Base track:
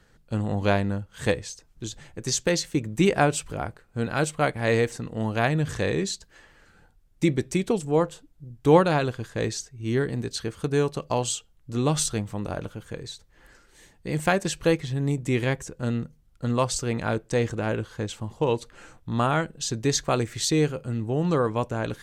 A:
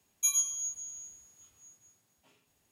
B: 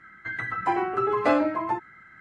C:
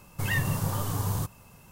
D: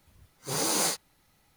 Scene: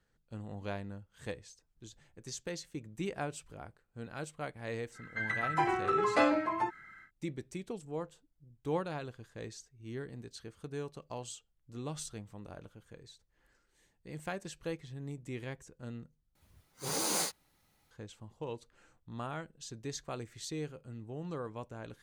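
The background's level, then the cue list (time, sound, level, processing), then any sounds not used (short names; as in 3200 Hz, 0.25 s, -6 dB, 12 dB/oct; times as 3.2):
base track -17 dB
4.91 add B -6.5 dB, fades 0.10 s + high shelf 2400 Hz +10 dB
16.35 replace with D -5.5 dB
not used: A, C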